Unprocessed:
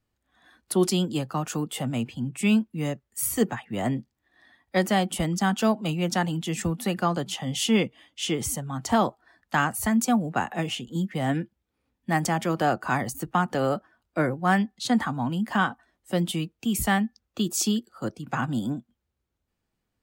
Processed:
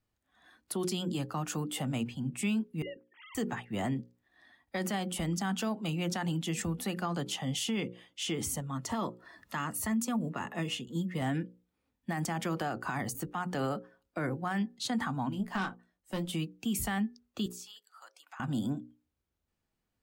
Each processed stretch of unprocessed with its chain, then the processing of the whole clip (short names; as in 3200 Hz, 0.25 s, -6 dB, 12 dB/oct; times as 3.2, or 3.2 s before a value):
2.82–3.35 sine-wave speech + compressor, threshold -34 dBFS
8.6–11.22 upward compressor, threshold -37 dBFS + notch comb 770 Hz + hard clip -13.5 dBFS
15.29–16.33 tube stage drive 20 dB, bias 0.3 + doubler 21 ms -8 dB + upward expander, over -36 dBFS
17.46–18.4 HPF 850 Hz 24 dB/oct + compressor 2.5:1, threshold -49 dBFS
whole clip: notches 60/120/180/240/300/360/420/480/540 Hz; dynamic EQ 570 Hz, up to -4 dB, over -37 dBFS, Q 2.2; limiter -21 dBFS; gain -3.5 dB